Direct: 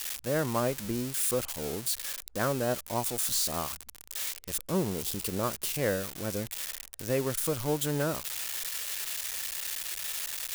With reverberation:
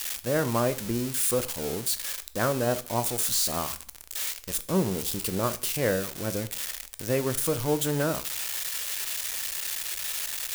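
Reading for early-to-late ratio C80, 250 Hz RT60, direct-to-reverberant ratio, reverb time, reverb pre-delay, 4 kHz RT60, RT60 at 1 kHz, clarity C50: 21.5 dB, 0.45 s, 11.5 dB, 0.45 s, 6 ms, 0.40 s, 0.45 s, 17.0 dB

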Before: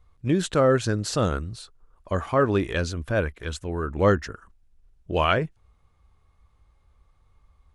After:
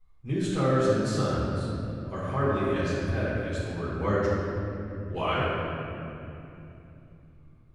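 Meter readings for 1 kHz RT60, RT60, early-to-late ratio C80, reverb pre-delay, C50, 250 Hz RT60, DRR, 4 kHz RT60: 2.6 s, 2.9 s, -1.0 dB, 6 ms, -2.5 dB, 4.5 s, -10.0 dB, 1.9 s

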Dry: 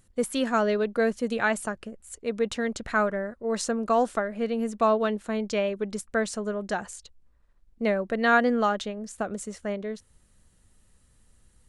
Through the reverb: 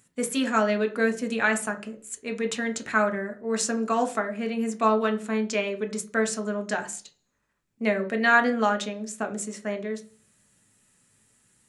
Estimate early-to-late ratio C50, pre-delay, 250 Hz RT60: 15.5 dB, 3 ms, 0.50 s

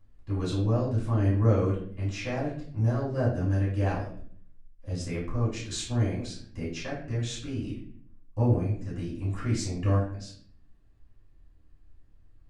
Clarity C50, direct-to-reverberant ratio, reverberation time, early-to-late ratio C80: 4.5 dB, -9.0 dB, 0.55 s, 8.5 dB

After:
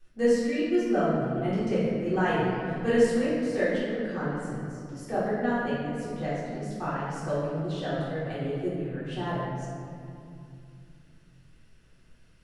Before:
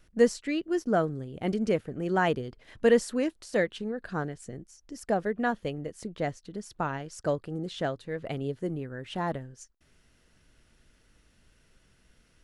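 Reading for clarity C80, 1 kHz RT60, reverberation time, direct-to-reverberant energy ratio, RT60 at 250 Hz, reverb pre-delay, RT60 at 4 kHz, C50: 0.0 dB, 2.3 s, 2.5 s, -12.5 dB, 3.5 s, 3 ms, 1.4 s, -2.5 dB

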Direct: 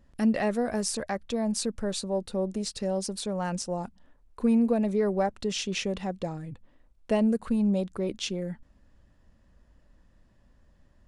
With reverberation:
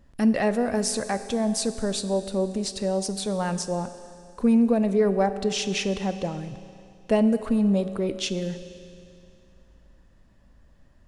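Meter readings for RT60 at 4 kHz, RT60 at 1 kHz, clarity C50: 2.5 s, 2.5 s, 12.0 dB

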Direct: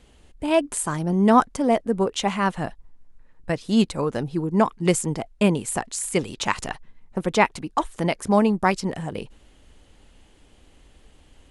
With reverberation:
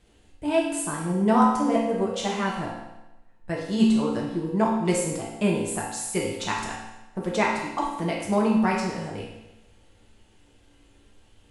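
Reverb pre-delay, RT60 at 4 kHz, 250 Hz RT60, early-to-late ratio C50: 4 ms, 0.95 s, 1.0 s, 2.0 dB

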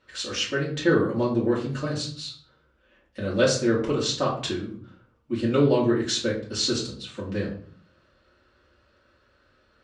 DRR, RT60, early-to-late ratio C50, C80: -6.5 dB, 0.50 s, 7.5 dB, 11.0 dB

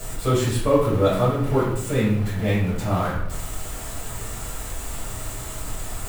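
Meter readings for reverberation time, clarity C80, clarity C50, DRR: 0.70 s, 6.0 dB, 2.5 dB, -8.5 dB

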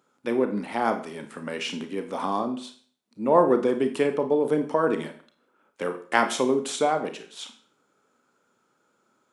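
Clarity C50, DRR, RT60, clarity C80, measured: 11.0 dB, 7.0 dB, 0.45 s, 14.5 dB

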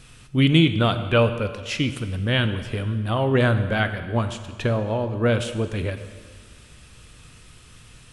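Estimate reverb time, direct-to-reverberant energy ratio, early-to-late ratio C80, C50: 1.7 s, 9.0 dB, 11.5 dB, 10.5 dB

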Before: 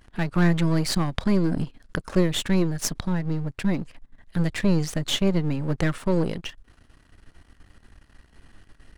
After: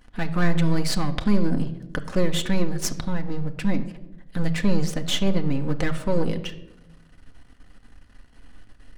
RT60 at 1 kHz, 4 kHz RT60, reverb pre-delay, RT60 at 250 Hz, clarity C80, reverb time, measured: 0.80 s, 0.50 s, 4 ms, 1.2 s, 16.0 dB, 0.95 s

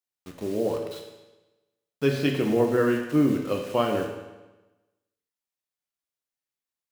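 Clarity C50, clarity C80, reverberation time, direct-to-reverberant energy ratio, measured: 5.0 dB, 7.0 dB, 1.1 s, 1.5 dB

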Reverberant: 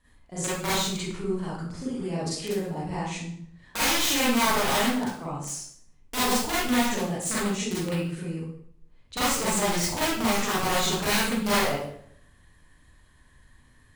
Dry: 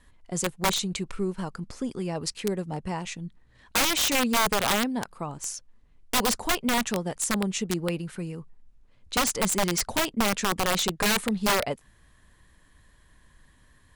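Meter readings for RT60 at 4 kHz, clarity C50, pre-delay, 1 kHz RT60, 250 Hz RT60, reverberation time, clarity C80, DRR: 0.50 s, -2.0 dB, 33 ms, 0.60 s, 0.70 s, 0.65 s, 4.0 dB, -9.5 dB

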